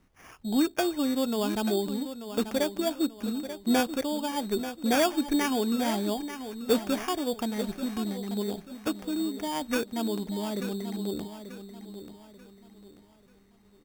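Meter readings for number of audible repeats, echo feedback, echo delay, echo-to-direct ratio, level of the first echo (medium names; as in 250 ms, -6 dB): 3, 36%, 887 ms, -10.5 dB, -11.0 dB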